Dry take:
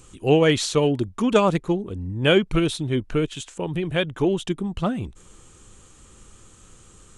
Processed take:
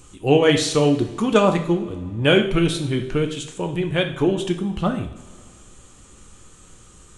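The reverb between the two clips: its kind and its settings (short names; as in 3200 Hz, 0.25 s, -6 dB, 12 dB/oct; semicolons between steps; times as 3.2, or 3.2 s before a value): two-slope reverb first 0.56 s, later 2.4 s, from -18 dB, DRR 4 dB; gain +1 dB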